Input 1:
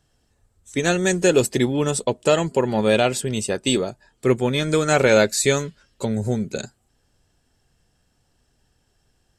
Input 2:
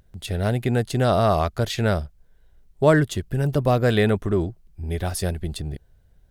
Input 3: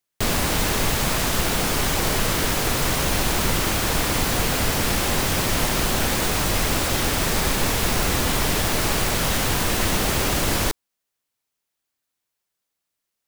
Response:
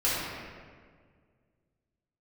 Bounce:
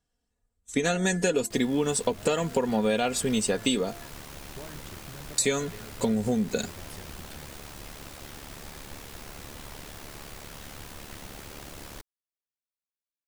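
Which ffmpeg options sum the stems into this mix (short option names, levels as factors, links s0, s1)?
-filter_complex "[0:a]bandreject=f=344.3:t=h:w=4,bandreject=f=688.6:t=h:w=4,bandreject=f=1032.9:t=h:w=4,bandreject=f=1377.2:t=h:w=4,bandreject=f=1721.5:t=h:w=4,bandreject=f=2065.8:t=h:w=4,agate=range=0.158:threshold=0.00447:ratio=16:detection=peak,aecho=1:1:4.2:0.56,volume=1.06,asplit=3[s0][s1][s2];[s0]atrim=end=4.09,asetpts=PTS-STARTPTS,afade=t=out:st=4.086:d=0.004:c=hsin[s3];[s1]atrim=start=4.09:end=5.38,asetpts=PTS-STARTPTS,volume=0[s4];[s2]atrim=start=5.38,asetpts=PTS-STARTPTS,afade=t=in:d=0.004:c=hsin[s5];[s3][s4][s5]concat=n=3:v=0:a=1[s6];[1:a]acompressor=threshold=0.0501:ratio=6,adelay=1750,volume=0.15[s7];[2:a]tremolo=f=72:d=0.667,adelay=1300,volume=0.119[s8];[s6][s7][s8]amix=inputs=3:normalize=0,acompressor=threshold=0.0794:ratio=6"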